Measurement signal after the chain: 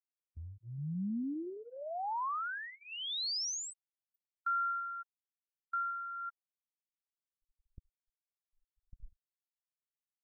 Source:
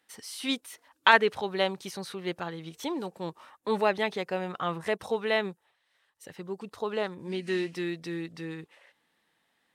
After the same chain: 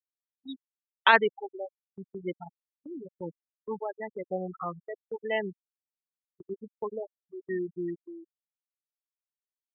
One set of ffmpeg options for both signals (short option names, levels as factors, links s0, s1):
-af "tremolo=f=0.9:d=0.64,afftfilt=real='re*gte(hypot(re,im),0.0794)':imag='im*gte(hypot(re,im),0.0794)':win_size=1024:overlap=0.75,agate=range=0.0794:threshold=0.00447:ratio=16:detection=peak"